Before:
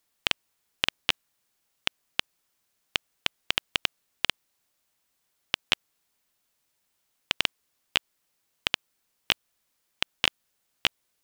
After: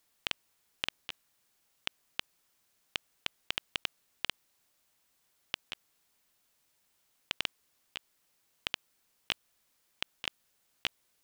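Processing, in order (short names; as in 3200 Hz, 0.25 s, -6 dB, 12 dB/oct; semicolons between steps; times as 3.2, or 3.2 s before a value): negative-ratio compressor -28 dBFS, ratio -0.5; gain -4 dB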